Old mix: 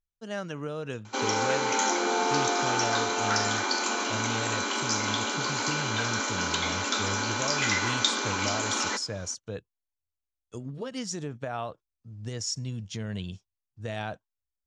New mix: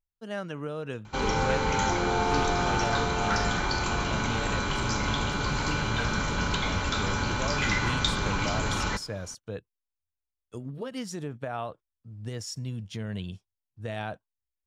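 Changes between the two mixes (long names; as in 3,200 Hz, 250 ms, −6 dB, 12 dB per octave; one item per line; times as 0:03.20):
background: remove linear-phase brick-wall high-pass 210 Hz
master: remove low-pass with resonance 6,700 Hz, resonance Q 2.5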